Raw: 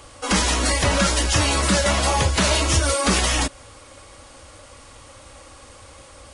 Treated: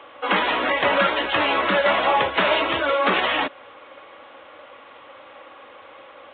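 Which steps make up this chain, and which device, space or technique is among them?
telephone (band-pass 400–3100 Hz; trim +4 dB; µ-law 64 kbps 8 kHz)

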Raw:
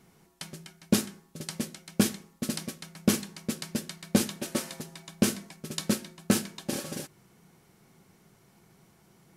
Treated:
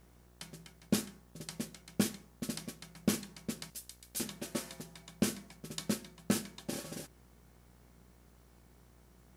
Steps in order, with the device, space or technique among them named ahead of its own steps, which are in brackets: 3.70–4.20 s: differentiator; video cassette with head-switching buzz (mains buzz 60 Hz, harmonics 32, -55 dBFS -6 dB/octave; white noise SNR 34 dB); trim -7 dB

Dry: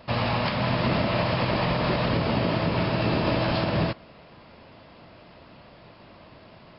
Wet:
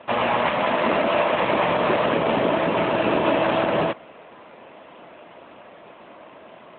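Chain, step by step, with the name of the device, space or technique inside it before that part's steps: 0.58–1.43 s: high-pass 180 Hz 24 dB/octave; telephone (band-pass 310–3400 Hz; trim +8 dB; AMR-NB 12.2 kbps 8 kHz)

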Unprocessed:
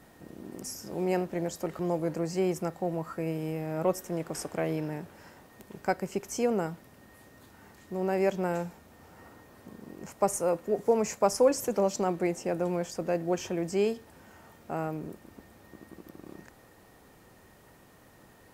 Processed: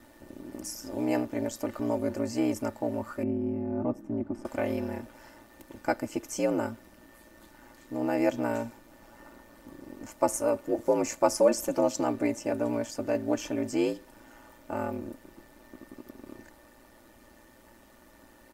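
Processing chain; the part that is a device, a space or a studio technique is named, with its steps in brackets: 3.23–4.45 s: FFT filter 150 Hz 0 dB, 270 Hz +13 dB, 440 Hz -13 dB, 650 Hz -4 dB, 7.4 kHz -26 dB; ring-modulated robot voice (ring modulator 58 Hz; comb 3.4 ms, depth 67%); trim +2 dB

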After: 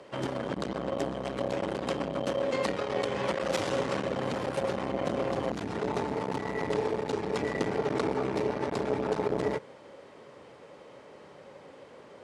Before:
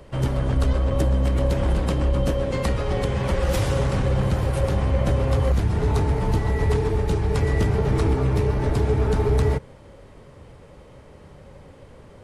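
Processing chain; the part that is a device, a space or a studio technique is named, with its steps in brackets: public-address speaker with an overloaded transformer (transformer saturation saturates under 250 Hz; band-pass 300–7000 Hz)

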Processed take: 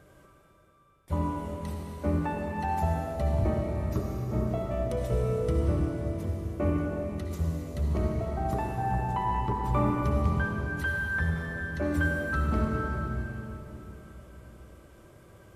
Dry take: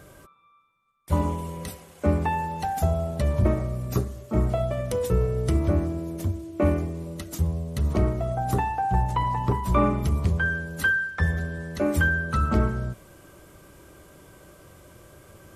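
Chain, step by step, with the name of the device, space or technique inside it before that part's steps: swimming-pool hall (reverberation RT60 3.7 s, pre-delay 54 ms, DRR -0.5 dB; treble shelf 4.2 kHz -7.5 dB); trim -7 dB

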